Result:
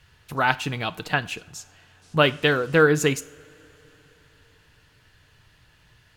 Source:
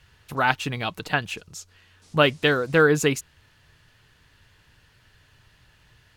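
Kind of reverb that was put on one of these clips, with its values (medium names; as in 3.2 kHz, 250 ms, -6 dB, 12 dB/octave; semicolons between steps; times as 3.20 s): two-slope reverb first 0.47 s, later 4.3 s, from -21 dB, DRR 14 dB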